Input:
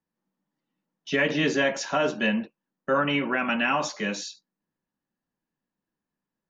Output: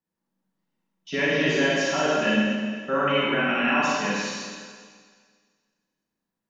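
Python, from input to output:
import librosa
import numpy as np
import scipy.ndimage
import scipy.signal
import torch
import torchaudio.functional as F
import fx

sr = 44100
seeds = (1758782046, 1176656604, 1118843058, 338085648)

y = fx.rev_schroeder(x, sr, rt60_s=1.8, comb_ms=33, drr_db=-6.0)
y = y * librosa.db_to_amplitude(-4.5)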